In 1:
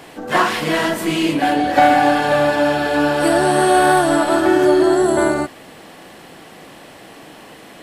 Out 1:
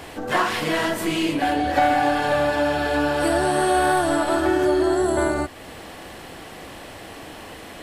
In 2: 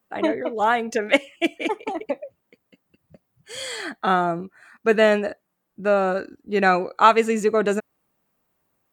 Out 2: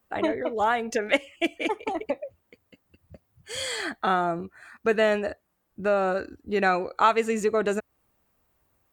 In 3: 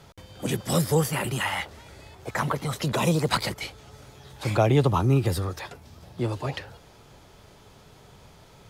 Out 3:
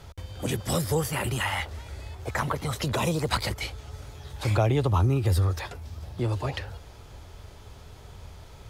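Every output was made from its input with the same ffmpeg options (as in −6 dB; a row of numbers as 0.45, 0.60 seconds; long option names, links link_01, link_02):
-af "acompressor=threshold=-30dB:ratio=1.5,lowshelf=frequency=110:width_type=q:width=1.5:gain=9,volume=1.5dB"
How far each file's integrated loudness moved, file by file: −5.5, −4.5, −2.0 LU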